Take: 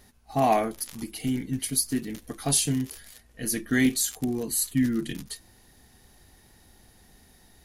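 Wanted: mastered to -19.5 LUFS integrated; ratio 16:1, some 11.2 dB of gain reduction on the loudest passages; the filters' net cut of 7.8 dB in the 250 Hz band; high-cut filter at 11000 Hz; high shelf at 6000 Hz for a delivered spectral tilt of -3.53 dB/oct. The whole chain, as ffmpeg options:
-af "lowpass=11k,equalizer=f=250:t=o:g=-8.5,highshelf=f=6k:g=7,acompressor=threshold=-27dB:ratio=16,volume=13.5dB"

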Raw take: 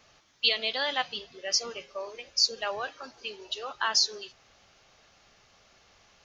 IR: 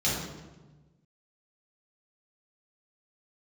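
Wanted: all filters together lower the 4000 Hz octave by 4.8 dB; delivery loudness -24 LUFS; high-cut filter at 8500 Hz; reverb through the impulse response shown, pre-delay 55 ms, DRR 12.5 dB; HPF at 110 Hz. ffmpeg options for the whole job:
-filter_complex "[0:a]highpass=110,lowpass=8.5k,equalizer=f=4k:t=o:g=-6,asplit=2[a][b];[1:a]atrim=start_sample=2205,adelay=55[c];[b][c]afir=irnorm=-1:irlink=0,volume=-23.5dB[d];[a][d]amix=inputs=2:normalize=0,volume=8dB"

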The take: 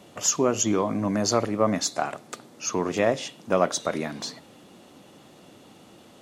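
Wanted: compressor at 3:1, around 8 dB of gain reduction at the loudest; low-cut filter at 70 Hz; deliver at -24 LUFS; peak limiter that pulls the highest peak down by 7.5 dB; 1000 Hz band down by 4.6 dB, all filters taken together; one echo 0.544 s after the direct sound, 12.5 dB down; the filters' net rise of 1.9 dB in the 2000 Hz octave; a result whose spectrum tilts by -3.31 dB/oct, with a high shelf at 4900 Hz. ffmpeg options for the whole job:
-af "highpass=70,equalizer=f=1k:t=o:g=-8,equalizer=f=2k:t=o:g=4,highshelf=f=4.9k:g=5.5,acompressor=threshold=-27dB:ratio=3,alimiter=limit=-21.5dB:level=0:latency=1,aecho=1:1:544:0.237,volume=8.5dB"

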